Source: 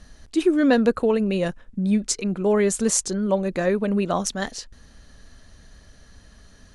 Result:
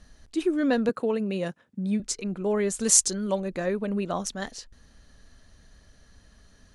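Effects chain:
0:00.89–0:02.00: high-pass filter 120 Hz 24 dB per octave
0:02.81–0:03.40: high-shelf EQ 2,400 Hz +11 dB
level −6 dB

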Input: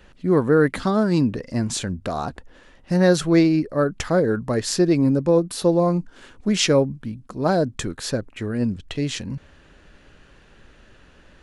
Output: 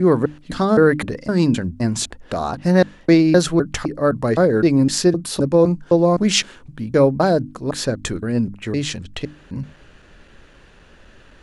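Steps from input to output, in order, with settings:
slices reordered back to front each 257 ms, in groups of 2
mains-hum notches 50/100/150/200/250/300 Hz
level +3.5 dB

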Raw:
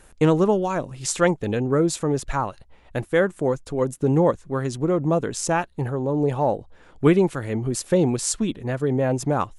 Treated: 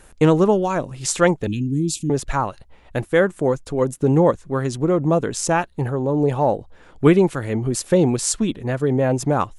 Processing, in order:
0:01.47–0:02.10: Chebyshev band-stop filter 310–2,600 Hz, order 4
level +3 dB

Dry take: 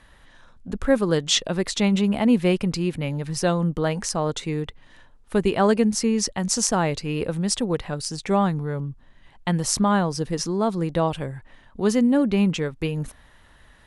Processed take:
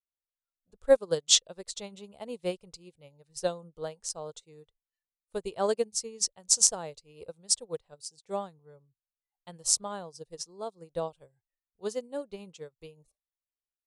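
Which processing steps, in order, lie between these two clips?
noise reduction from a noise print of the clip's start 21 dB
octave-band graphic EQ 250/500/2,000/4,000/8,000 Hz −11/+8/−6/+5/+10 dB
expander for the loud parts 2.5 to 1, over −32 dBFS
level −3.5 dB

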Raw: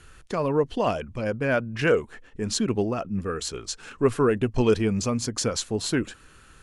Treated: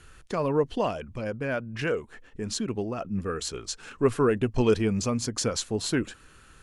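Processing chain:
0:00.86–0:03.01: downward compressor 1.5 to 1, threshold −32 dBFS, peak gain reduction 6 dB
level −1.5 dB

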